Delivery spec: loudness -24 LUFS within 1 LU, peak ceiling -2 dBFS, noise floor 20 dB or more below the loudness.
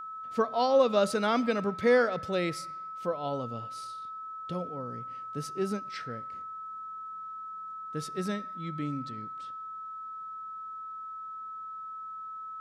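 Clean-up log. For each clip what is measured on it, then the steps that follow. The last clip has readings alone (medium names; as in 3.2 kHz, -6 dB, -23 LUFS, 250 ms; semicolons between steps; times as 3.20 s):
steady tone 1.3 kHz; tone level -38 dBFS; loudness -32.5 LUFS; peak level -13.0 dBFS; loudness target -24.0 LUFS
-> band-stop 1.3 kHz, Q 30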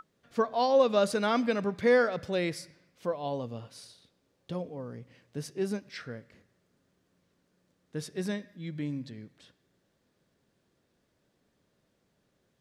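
steady tone not found; loudness -30.0 LUFS; peak level -13.0 dBFS; loudness target -24.0 LUFS
-> trim +6 dB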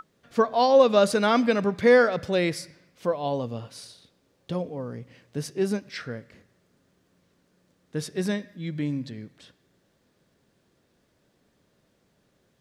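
loudness -24.5 LUFS; peak level -7.0 dBFS; noise floor -69 dBFS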